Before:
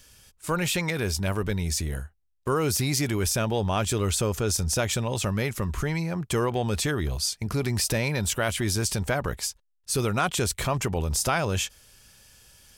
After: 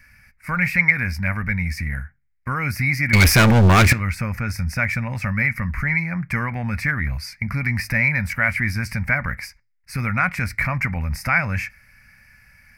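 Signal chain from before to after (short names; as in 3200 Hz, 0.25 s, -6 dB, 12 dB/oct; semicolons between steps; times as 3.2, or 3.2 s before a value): EQ curve 240 Hz 0 dB, 390 Hz -23 dB, 560 Hz -9 dB, 1100 Hz -3 dB, 2200 Hz +14 dB, 3300 Hz -27 dB, 4900 Hz -8 dB, 7200 Hz -22 dB, 12000 Hz -10 dB; 3.13–3.93 sample leveller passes 5; on a send: reverb RT60 0.25 s, pre-delay 3 ms, DRR 14 dB; on the sum: gain +4 dB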